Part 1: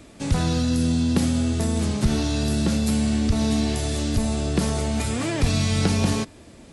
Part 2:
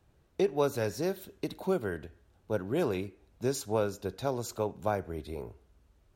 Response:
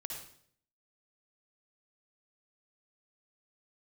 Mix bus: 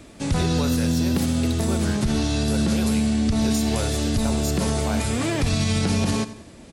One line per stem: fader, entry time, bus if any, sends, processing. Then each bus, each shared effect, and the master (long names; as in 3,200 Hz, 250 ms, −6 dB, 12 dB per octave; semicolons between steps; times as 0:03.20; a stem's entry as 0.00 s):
+1.5 dB, 0.00 s, no send, echo send −16.5 dB, no processing
+0.5 dB, 0.00 s, send −6 dB, no echo send, tilt shelving filter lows −8 dB, about 1,300 Hz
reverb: on, RT60 0.60 s, pre-delay 51 ms
echo: repeating echo 91 ms, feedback 41%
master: brickwall limiter −12.5 dBFS, peak gain reduction 5.5 dB